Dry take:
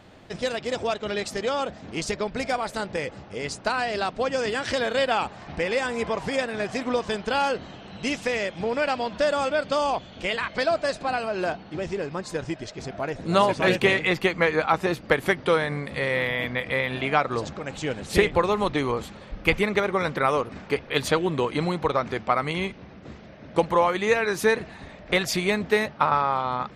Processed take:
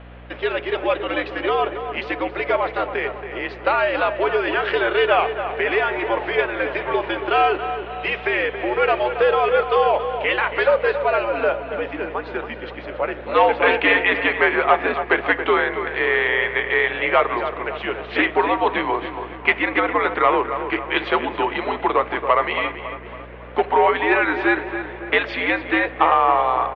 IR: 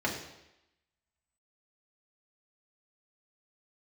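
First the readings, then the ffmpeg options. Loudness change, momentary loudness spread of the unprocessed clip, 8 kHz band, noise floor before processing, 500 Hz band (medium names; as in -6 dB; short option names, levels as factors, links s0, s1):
+5.0 dB, 10 LU, under -30 dB, -45 dBFS, +4.5 dB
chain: -filter_complex "[0:a]asoftclip=type=tanh:threshold=0.237,highpass=f=530:t=q:w=0.5412,highpass=f=530:t=q:w=1.307,lowpass=f=3200:t=q:w=0.5176,lowpass=f=3200:t=q:w=0.7071,lowpass=f=3200:t=q:w=1.932,afreqshift=-100,asplit=2[s0][s1];[s1]adelay=277,lowpass=f=2300:p=1,volume=0.355,asplit=2[s2][s3];[s3]adelay=277,lowpass=f=2300:p=1,volume=0.53,asplit=2[s4][s5];[s5]adelay=277,lowpass=f=2300:p=1,volume=0.53,asplit=2[s6][s7];[s7]adelay=277,lowpass=f=2300:p=1,volume=0.53,asplit=2[s8][s9];[s9]adelay=277,lowpass=f=2300:p=1,volume=0.53,asplit=2[s10][s11];[s11]adelay=277,lowpass=f=2300:p=1,volume=0.53[s12];[s0][s2][s4][s6][s8][s10][s12]amix=inputs=7:normalize=0,asplit=2[s13][s14];[1:a]atrim=start_sample=2205,adelay=7[s15];[s14][s15]afir=irnorm=-1:irlink=0,volume=0.075[s16];[s13][s16]amix=inputs=2:normalize=0,aeval=exprs='val(0)+0.00398*(sin(2*PI*60*n/s)+sin(2*PI*2*60*n/s)/2+sin(2*PI*3*60*n/s)/3+sin(2*PI*4*60*n/s)/4+sin(2*PI*5*60*n/s)/5)':c=same,volume=2.51"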